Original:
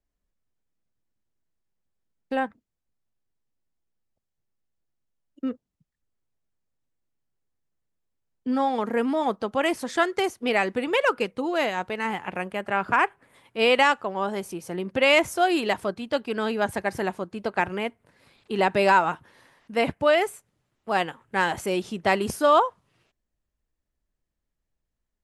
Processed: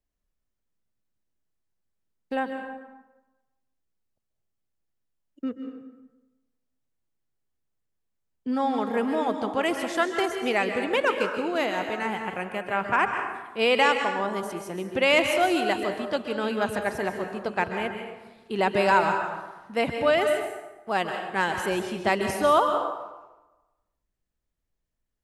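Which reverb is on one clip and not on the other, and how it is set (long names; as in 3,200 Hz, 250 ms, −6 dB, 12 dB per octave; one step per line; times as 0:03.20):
dense smooth reverb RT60 1.1 s, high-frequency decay 0.65×, pre-delay 120 ms, DRR 5 dB
level −2 dB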